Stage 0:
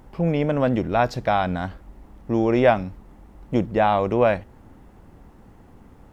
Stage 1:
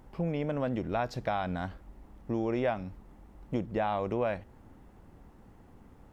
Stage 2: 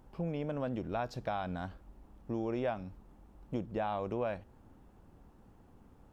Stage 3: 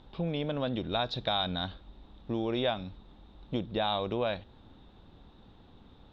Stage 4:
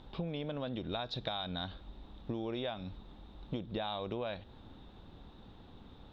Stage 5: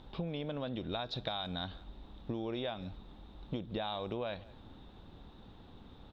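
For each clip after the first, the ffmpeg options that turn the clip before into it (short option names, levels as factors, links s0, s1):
-af "acompressor=threshold=0.0794:ratio=2.5,volume=0.473"
-af "equalizer=f=2000:t=o:w=0.29:g=-6,volume=0.596"
-af "lowpass=f=3700:t=q:w=16,volume=1.5"
-af "acompressor=threshold=0.0158:ratio=6,volume=1.19"
-filter_complex "[0:a]asplit=2[s0][s1];[s1]adelay=180,highpass=300,lowpass=3400,asoftclip=type=hard:threshold=0.0299,volume=0.0891[s2];[s0][s2]amix=inputs=2:normalize=0"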